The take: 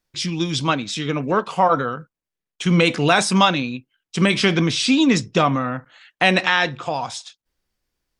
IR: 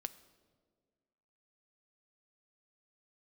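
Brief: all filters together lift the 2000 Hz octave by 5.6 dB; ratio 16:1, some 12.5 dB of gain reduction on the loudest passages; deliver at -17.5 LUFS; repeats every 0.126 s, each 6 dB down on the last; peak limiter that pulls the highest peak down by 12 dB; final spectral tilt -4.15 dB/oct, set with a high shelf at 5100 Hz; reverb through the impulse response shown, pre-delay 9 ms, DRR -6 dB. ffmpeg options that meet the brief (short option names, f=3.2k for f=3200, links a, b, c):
-filter_complex "[0:a]equalizer=f=2k:t=o:g=8,highshelf=f=5.1k:g=-5.5,acompressor=threshold=-21dB:ratio=16,alimiter=limit=-19dB:level=0:latency=1,aecho=1:1:126|252|378|504|630|756:0.501|0.251|0.125|0.0626|0.0313|0.0157,asplit=2[a][b];[1:a]atrim=start_sample=2205,adelay=9[c];[b][c]afir=irnorm=-1:irlink=0,volume=8.5dB[d];[a][d]amix=inputs=2:normalize=0,volume=4.5dB"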